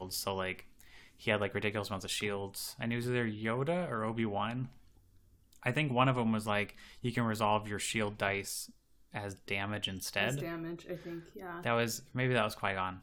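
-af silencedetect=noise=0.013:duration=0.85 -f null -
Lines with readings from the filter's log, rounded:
silence_start: 4.65
silence_end: 5.63 | silence_duration: 0.98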